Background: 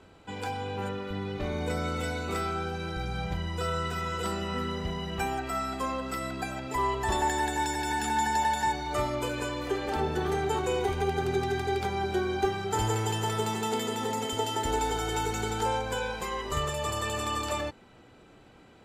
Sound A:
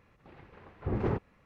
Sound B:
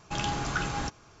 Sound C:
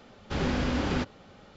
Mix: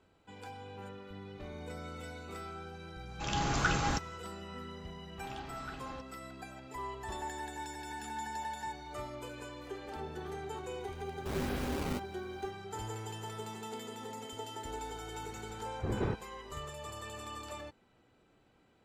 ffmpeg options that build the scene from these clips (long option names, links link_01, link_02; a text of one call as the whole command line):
ffmpeg -i bed.wav -i cue0.wav -i cue1.wav -i cue2.wav -filter_complex "[2:a]asplit=2[link_01][link_02];[0:a]volume=-13dB[link_03];[link_01]dynaudnorm=framelen=110:gausssize=5:maxgain=8.5dB[link_04];[link_02]lowpass=frequency=4900:width=0.5412,lowpass=frequency=4900:width=1.3066[link_05];[3:a]acrusher=samples=15:mix=1:aa=0.000001:lfo=1:lforange=24:lforate=1.3[link_06];[link_04]atrim=end=1.2,asetpts=PTS-STARTPTS,volume=-8dB,afade=type=in:duration=0.004:curve=hsin,afade=type=out:start_time=1.196:duration=0.004:curve=hsin,adelay=136269S[link_07];[link_05]atrim=end=1.2,asetpts=PTS-STARTPTS,volume=-16.5dB,afade=type=in:duration=0.004:curve=hsin,afade=type=out:start_time=1.196:duration=0.004:curve=hsin,adelay=5120[link_08];[link_06]atrim=end=1.56,asetpts=PTS-STARTPTS,volume=-8dB,afade=type=in:duration=0.004:curve=hsin,afade=type=out:start_time=1.556:duration=0.004:curve=hsin,adelay=10950[link_09];[1:a]atrim=end=1.45,asetpts=PTS-STARTPTS,volume=-3.5dB,afade=type=in:duration=0.004:curve=hsin,afade=type=out:start_time=1.446:duration=0.004:curve=hsin,adelay=14970[link_10];[link_03][link_07][link_08][link_09][link_10]amix=inputs=5:normalize=0" out.wav